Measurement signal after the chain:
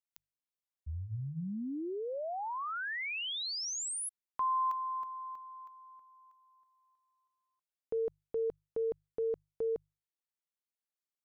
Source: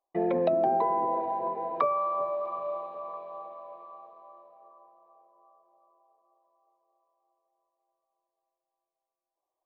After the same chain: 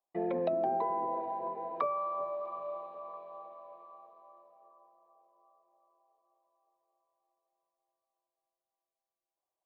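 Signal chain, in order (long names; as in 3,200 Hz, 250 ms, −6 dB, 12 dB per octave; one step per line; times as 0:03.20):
mains-hum notches 50/100/150 Hz
level −6 dB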